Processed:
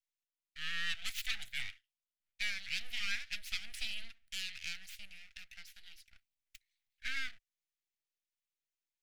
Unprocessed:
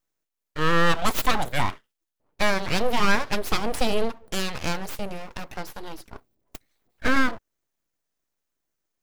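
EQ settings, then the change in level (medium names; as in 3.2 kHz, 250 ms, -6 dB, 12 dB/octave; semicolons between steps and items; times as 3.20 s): inverse Chebyshev high-pass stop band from 1.1 kHz, stop band 40 dB; tilt EQ -4 dB/octave; -1.0 dB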